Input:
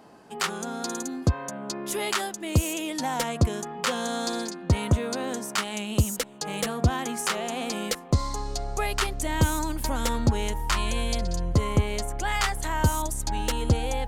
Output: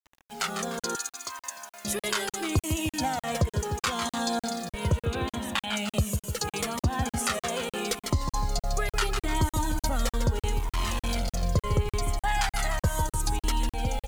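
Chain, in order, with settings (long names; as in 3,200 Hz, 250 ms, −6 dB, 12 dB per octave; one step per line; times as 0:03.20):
automatic gain control gain up to 7 dB
repeating echo 150 ms, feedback 46%, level −8 dB
bit reduction 7 bits
0:00.95–0:01.85: high-pass filter 1,400 Hz 12 dB per octave
0:05.05–0:05.76: high shelf with overshoot 4,200 Hz −6 dB, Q 3
0:10.59–0:11.43: hard clipping −22.5 dBFS, distortion −17 dB
downward compressor 2.5 to 1, threshold −21 dBFS, peak gain reduction 8.5 dB
regular buffer underruns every 0.30 s, samples 2,048, zero, from 0:00.79
flanger whose copies keep moving one way falling 0.74 Hz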